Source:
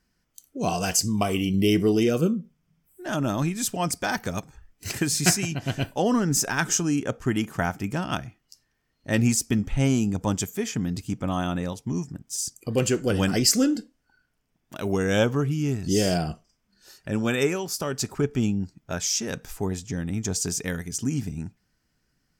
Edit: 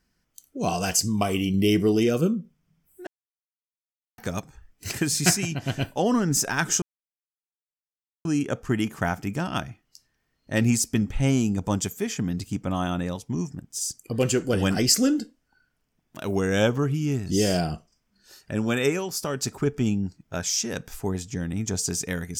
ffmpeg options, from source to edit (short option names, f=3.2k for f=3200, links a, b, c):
-filter_complex "[0:a]asplit=4[a][b][c][d];[a]atrim=end=3.07,asetpts=PTS-STARTPTS,afade=t=out:st=3.066:d=0.004:c=hsin[e];[b]atrim=start=3.07:end=4.18,asetpts=PTS-STARTPTS,volume=0[f];[c]atrim=start=4.18:end=6.82,asetpts=PTS-STARTPTS,afade=t=in:d=0.004:c=hsin,afade=t=out:st=2.636:d=0.004:c=hsin,apad=pad_dur=1.43[g];[d]atrim=start=6.82,asetpts=PTS-STARTPTS,afade=t=in:d=0.004:c=hsin[h];[e][f][g][h]concat=n=4:v=0:a=1"